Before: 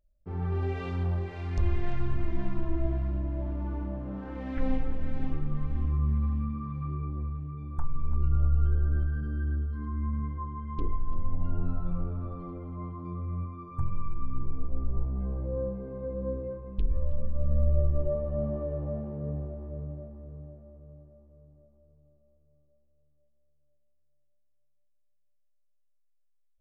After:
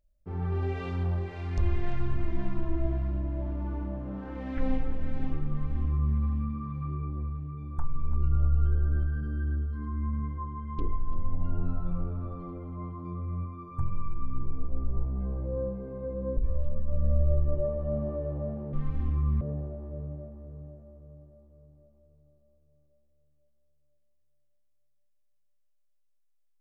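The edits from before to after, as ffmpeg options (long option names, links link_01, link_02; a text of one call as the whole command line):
ffmpeg -i in.wav -filter_complex "[0:a]asplit=4[link_01][link_02][link_03][link_04];[link_01]atrim=end=16.372[link_05];[link_02]atrim=start=16.838:end=19.202[link_06];[link_03]atrim=start=5.488:end=6.172[link_07];[link_04]atrim=start=19.198[link_08];[link_05][link_06]acrossfade=duration=0.004:curve1=hsin:curve2=hsin[link_09];[link_09][link_07]acrossfade=duration=0.004:curve1=hsin:curve2=hsin[link_10];[link_10][link_08]acrossfade=duration=0.004:curve1=hsin:curve2=hsin" out.wav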